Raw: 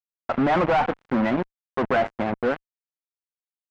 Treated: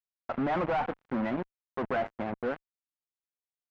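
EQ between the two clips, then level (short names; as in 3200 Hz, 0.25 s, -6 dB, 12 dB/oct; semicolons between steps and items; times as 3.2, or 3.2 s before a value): high shelf 4500 Hz -7 dB; -8.5 dB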